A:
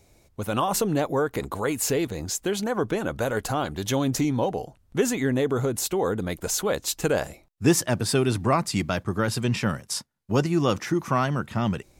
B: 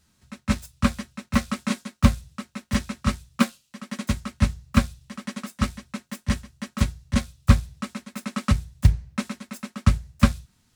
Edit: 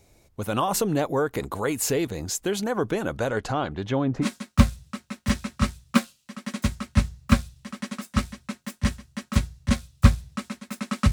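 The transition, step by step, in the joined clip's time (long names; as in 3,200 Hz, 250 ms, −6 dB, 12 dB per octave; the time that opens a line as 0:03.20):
A
0:03.17–0:04.27: low-pass filter 8,900 Hz → 1,200 Hz
0:04.24: continue with B from 0:01.69, crossfade 0.06 s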